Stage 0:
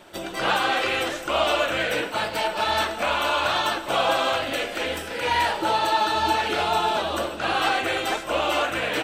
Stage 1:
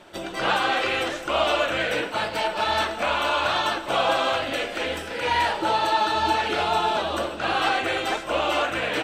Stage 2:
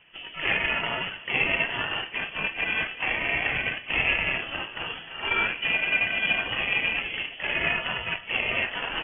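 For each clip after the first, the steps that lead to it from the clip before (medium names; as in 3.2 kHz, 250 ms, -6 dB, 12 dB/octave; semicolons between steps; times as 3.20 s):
treble shelf 11 kHz -11.5 dB
Chebyshev shaper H 7 -22 dB, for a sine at -8.5 dBFS; frequency inversion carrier 3.3 kHz; trim -1.5 dB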